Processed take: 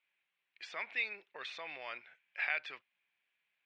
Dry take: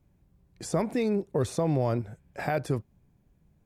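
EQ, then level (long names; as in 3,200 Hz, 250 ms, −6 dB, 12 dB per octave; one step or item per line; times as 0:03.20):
high-pass with resonance 2,400 Hz, resonance Q 2
low-pass filter 3,300 Hz 24 dB per octave
+3.0 dB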